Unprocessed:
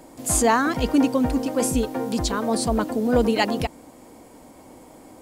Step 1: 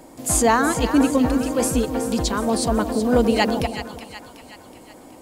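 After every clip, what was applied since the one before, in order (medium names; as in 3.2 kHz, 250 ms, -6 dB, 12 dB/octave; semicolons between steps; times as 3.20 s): two-band feedback delay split 930 Hz, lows 162 ms, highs 372 ms, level -10 dB; trim +1.5 dB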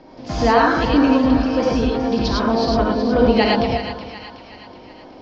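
steep low-pass 5.6 kHz 72 dB/octave; gated-style reverb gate 130 ms rising, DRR -2.5 dB; trim -1 dB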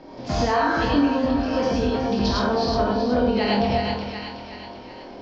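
compression, threshold -19 dBFS, peak gain reduction 9.5 dB; on a send: flutter echo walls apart 4.2 m, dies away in 0.33 s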